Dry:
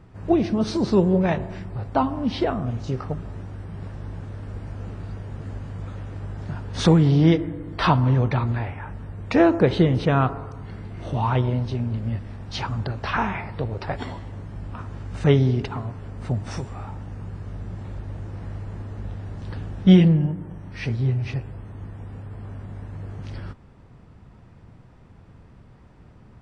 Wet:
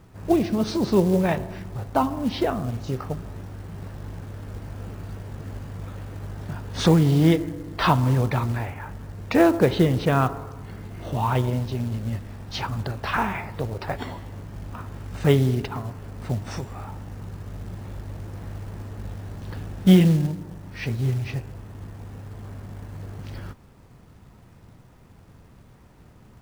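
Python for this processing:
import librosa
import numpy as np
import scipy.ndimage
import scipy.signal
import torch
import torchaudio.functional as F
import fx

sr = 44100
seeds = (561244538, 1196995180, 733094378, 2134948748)

y = fx.low_shelf(x, sr, hz=200.0, db=-2.5)
y = fx.quant_companded(y, sr, bits=6)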